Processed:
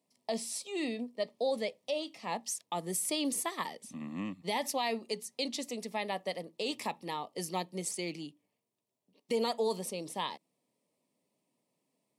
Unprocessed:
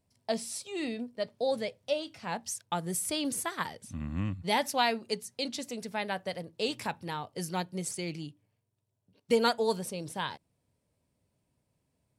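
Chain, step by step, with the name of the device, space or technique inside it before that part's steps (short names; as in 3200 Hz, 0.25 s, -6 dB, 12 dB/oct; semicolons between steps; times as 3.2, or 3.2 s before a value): PA system with an anti-feedback notch (HPF 200 Hz 24 dB/oct; Butterworth band-stop 1500 Hz, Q 3.3; limiter -22.5 dBFS, peak gain reduction 8.5 dB)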